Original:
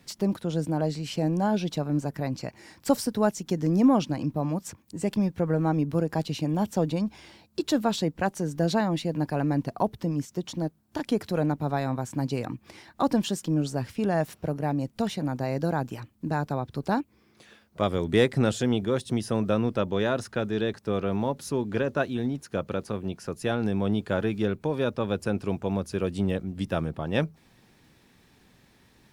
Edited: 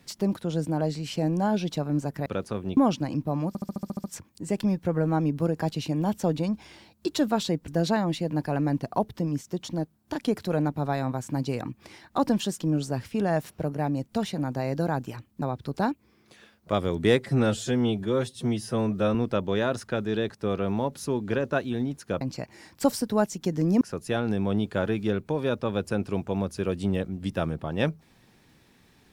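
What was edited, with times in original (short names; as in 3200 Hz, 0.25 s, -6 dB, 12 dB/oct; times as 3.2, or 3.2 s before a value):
2.26–3.86 swap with 22.65–23.16
4.57 stutter 0.07 s, 9 plays
8.21–8.52 cut
16.26–16.51 cut
18.29–19.59 stretch 1.5×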